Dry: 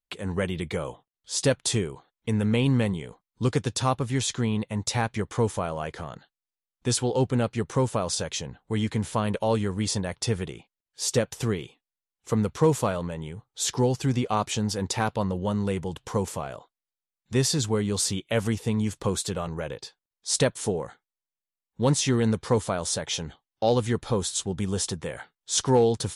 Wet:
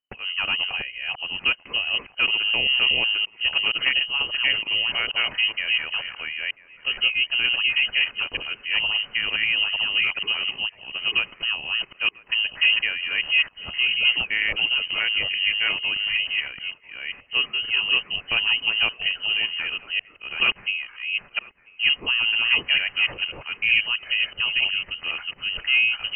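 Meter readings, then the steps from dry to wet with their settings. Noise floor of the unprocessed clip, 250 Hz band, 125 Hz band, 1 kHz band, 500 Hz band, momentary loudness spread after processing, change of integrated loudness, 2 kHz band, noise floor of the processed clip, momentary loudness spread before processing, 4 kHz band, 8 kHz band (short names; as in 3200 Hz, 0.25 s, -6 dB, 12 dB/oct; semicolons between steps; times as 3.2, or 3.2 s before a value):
under -85 dBFS, -20.5 dB, under -20 dB, -6.0 dB, -16.5 dB, 9 LU, +5.5 dB, +17.5 dB, -52 dBFS, 11 LU, +14.5 dB, under -40 dB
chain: reverse delay 0.465 s, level 0 dB; thinning echo 0.992 s, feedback 52%, high-pass 670 Hz, level -20 dB; inverted band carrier 3000 Hz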